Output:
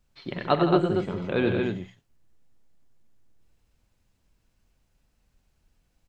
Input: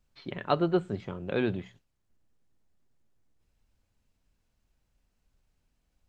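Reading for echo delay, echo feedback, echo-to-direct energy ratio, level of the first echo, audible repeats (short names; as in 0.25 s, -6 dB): 50 ms, no steady repeat, -2.0 dB, -16.5 dB, 5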